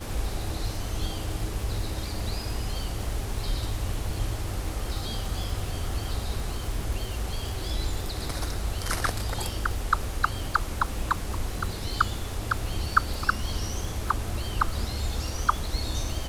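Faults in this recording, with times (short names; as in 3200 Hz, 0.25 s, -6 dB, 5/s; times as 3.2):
crackle 230/s -36 dBFS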